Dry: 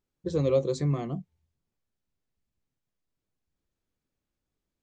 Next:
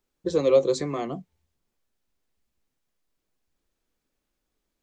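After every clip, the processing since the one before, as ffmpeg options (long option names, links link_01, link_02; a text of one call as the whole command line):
ffmpeg -i in.wav -filter_complex "[0:a]acrossover=split=260|1200|3400[link_01][link_02][link_03][link_04];[link_01]acompressor=threshold=-37dB:ratio=6[link_05];[link_05][link_02][link_03][link_04]amix=inputs=4:normalize=0,equalizer=frequency=110:width=0.9:gain=-10.5,volume=7dB" out.wav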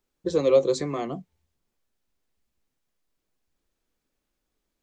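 ffmpeg -i in.wav -af anull out.wav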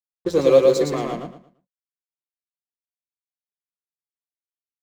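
ffmpeg -i in.wav -filter_complex "[0:a]aeval=exprs='sgn(val(0))*max(abs(val(0))-0.00794,0)':channel_layout=same,asplit=2[link_01][link_02];[link_02]aecho=0:1:113|226|339|452:0.708|0.191|0.0516|0.0139[link_03];[link_01][link_03]amix=inputs=2:normalize=0,volume=4.5dB" out.wav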